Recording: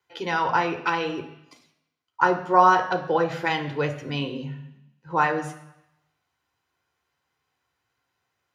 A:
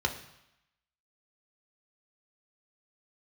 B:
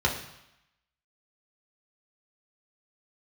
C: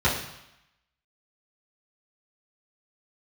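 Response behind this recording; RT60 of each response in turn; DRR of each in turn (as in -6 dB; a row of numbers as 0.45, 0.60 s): A; 0.85, 0.85, 0.85 s; 3.0, -2.0, -10.5 dB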